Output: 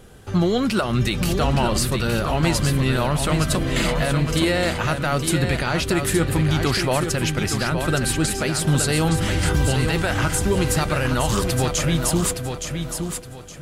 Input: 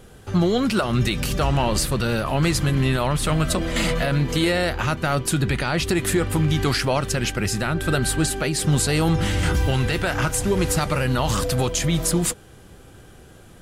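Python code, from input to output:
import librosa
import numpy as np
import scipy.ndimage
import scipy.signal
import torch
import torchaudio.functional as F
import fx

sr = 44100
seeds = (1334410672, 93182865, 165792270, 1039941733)

y = fx.echo_feedback(x, sr, ms=867, feedback_pct=28, wet_db=-6.5)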